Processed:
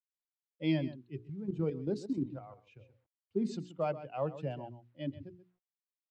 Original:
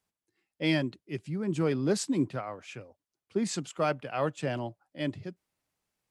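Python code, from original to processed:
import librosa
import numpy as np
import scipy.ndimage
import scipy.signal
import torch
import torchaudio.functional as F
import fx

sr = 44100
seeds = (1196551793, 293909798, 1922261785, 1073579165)

p1 = fx.bin_expand(x, sr, power=1.5)
p2 = fx.peak_eq(p1, sr, hz=1600.0, db=-13.0, octaves=1.3)
p3 = p2 + fx.echo_single(p2, sr, ms=132, db=-14.0, dry=0)
p4 = fx.level_steps(p3, sr, step_db=10, at=(1.23, 2.8))
p5 = fx.hum_notches(p4, sr, base_hz=60, count=8)
p6 = fx.quant_companded(p5, sr, bits=8)
y = scipy.signal.sosfilt(scipy.signal.butter(2, 2800.0, 'lowpass', fs=sr, output='sos'), p6)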